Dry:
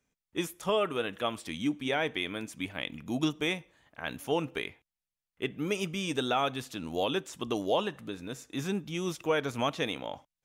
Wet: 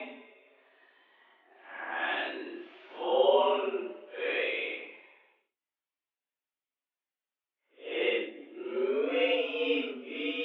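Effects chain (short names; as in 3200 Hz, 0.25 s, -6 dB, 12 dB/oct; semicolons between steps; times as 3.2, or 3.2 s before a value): Paulstretch 4.3×, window 0.10 s, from 3.57; mistuned SSB +85 Hz 220–3200 Hz; gain +3 dB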